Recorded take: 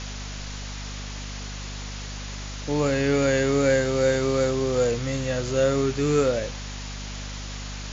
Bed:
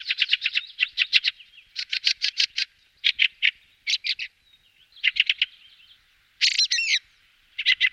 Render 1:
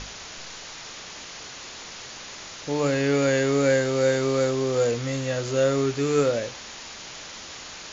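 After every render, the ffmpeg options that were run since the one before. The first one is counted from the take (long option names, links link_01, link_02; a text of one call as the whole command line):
ffmpeg -i in.wav -af "bandreject=frequency=50:width_type=h:width=6,bandreject=frequency=100:width_type=h:width=6,bandreject=frequency=150:width_type=h:width=6,bandreject=frequency=200:width_type=h:width=6,bandreject=frequency=250:width_type=h:width=6,bandreject=frequency=300:width_type=h:width=6" out.wav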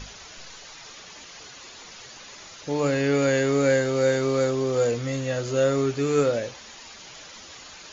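ffmpeg -i in.wav -af "afftdn=noise_reduction=8:noise_floor=-40" out.wav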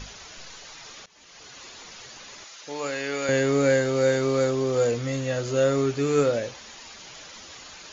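ffmpeg -i in.wav -filter_complex "[0:a]asettb=1/sr,asplit=3[link_01][link_02][link_03];[link_01]atrim=end=2.444[link_04];[link_02]atrim=start=2.44:end=3.29,asetpts=PTS-STARTPTS,afade=type=in:duration=0.004:curve=qsin,afade=type=out:start_time=0.846:duration=0.004:curve=qsin,highpass=frequency=980:poles=1[link_05];[link_03]atrim=start=3.286[link_06];[link_04][link_05]acrossfade=duration=0.004:curve1=hsin:curve2=qsin[link_07];[link_07][link_06]acrossfade=duration=0.004:curve1=qsin:curve2=hsin,asplit=2[link_08][link_09];[link_08]atrim=end=1.06,asetpts=PTS-STARTPTS,afade=type=out:start_time=1.056:duration=0.004:curve=hsin:silence=0.0944061[link_10];[link_09]atrim=start=1.06,asetpts=PTS-STARTPTS,afade=type=in:duration=0.54:silence=0.0944061[link_11];[link_10][link_11]concat=n=2:v=0:a=1" out.wav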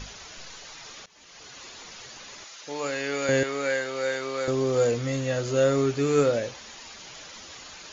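ffmpeg -i in.wav -filter_complex "[0:a]asettb=1/sr,asplit=3[link_01][link_02][link_03];[link_01]atrim=end=3.434[link_04];[link_02]atrim=start=3.43:end=4.48,asetpts=PTS-STARTPTS,afade=type=in:duration=0.004:curve=qsin,afade=type=out:start_time=1.046:duration=0.004:curve=qsin,bandpass=frequency=2200:width_type=q:width=0.5[link_05];[link_03]atrim=start=4.476[link_06];[link_04][link_05]acrossfade=duration=0.004:curve1=hsin:curve2=qsin[link_07];[link_07][link_06]acrossfade=duration=0.004:curve1=qsin:curve2=hsin" out.wav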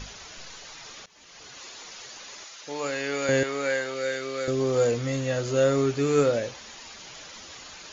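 ffmpeg -i in.wav -filter_complex "[0:a]asettb=1/sr,asplit=3[link_01][link_02][link_03];[link_01]atrim=end=1.574[link_04];[link_02]atrim=start=1.57:end=2.49,asetpts=PTS-STARTPTS,afade=type=in:duration=0.004:curve=qsin,afade=type=out:start_time=0.916:duration=0.004:curve=qsin,bass=frequency=250:gain=-7,treble=frequency=4000:gain=2[link_05];[link_03]atrim=start=2.486[link_06];[link_04][link_05]acrossfade=duration=0.004:curve1=hsin:curve2=qsin[link_07];[link_07][link_06]acrossfade=duration=0.004:curve1=qsin:curve2=hsin,asettb=1/sr,asplit=3[link_08][link_09][link_10];[link_08]atrim=end=3.944[link_11];[link_09]atrim=start=3.94:end=4.6,asetpts=PTS-STARTPTS,afade=type=in:duration=0.004:curve=qsin,afade=type=out:start_time=0.656:duration=0.004:curve=qsin,equalizer=frequency=920:width=3.1:gain=-12.5[link_12];[link_10]atrim=start=4.596[link_13];[link_11][link_12]acrossfade=duration=0.004:curve1=hsin:curve2=qsin[link_14];[link_14][link_13]acrossfade=duration=0.004:curve1=qsin:curve2=hsin" out.wav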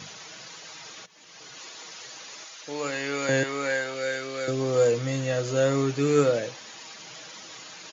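ffmpeg -i in.wav -af "highpass=frequency=110:width=0.5412,highpass=frequency=110:width=1.3066,aecho=1:1:6.3:0.34" out.wav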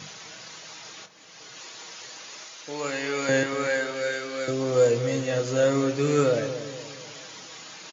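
ffmpeg -i in.wav -filter_complex "[0:a]asplit=2[link_01][link_02];[link_02]adelay=26,volume=-9.5dB[link_03];[link_01][link_03]amix=inputs=2:normalize=0,asplit=2[link_04][link_05];[link_05]adelay=237,lowpass=frequency=1100:poles=1,volume=-10dB,asplit=2[link_06][link_07];[link_07]adelay=237,lowpass=frequency=1100:poles=1,volume=0.5,asplit=2[link_08][link_09];[link_09]adelay=237,lowpass=frequency=1100:poles=1,volume=0.5,asplit=2[link_10][link_11];[link_11]adelay=237,lowpass=frequency=1100:poles=1,volume=0.5,asplit=2[link_12][link_13];[link_13]adelay=237,lowpass=frequency=1100:poles=1,volume=0.5[link_14];[link_04][link_06][link_08][link_10][link_12][link_14]amix=inputs=6:normalize=0" out.wav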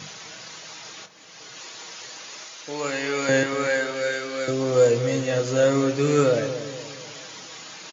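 ffmpeg -i in.wav -af "volume=2.5dB" out.wav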